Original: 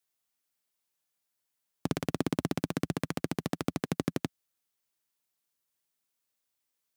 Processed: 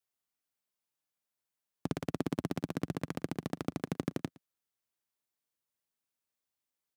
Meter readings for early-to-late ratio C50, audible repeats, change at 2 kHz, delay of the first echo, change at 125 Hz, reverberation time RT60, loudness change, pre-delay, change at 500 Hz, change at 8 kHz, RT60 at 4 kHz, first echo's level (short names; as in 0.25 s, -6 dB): none, 1, -5.5 dB, 0.114 s, -3.5 dB, none, -4.0 dB, none, -3.5 dB, -7.5 dB, none, -22.5 dB